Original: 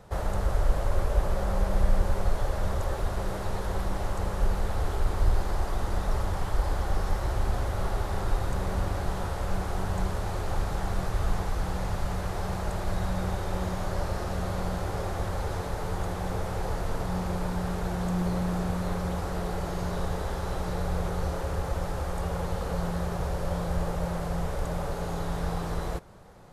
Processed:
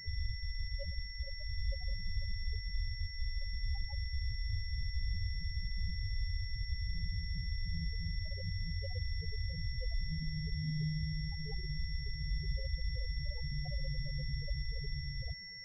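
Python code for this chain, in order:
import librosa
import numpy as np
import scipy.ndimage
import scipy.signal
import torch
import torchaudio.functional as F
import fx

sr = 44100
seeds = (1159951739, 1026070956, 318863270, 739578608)

y = fx.over_compress(x, sr, threshold_db=-27.0, ratio=-0.5)
y = fx.stretch_grains(y, sr, factor=0.59, grain_ms=27.0)
y = fx.spec_topn(y, sr, count=4)
y = y + 10.0 ** (-44.0 / 20.0) * np.sin(2.0 * np.pi * 2000.0 * np.arange(len(y)) / sr)
y = fx.pwm(y, sr, carrier_hz=5500.0)
y = y * 10.0 ** (-4.5 / 20.0)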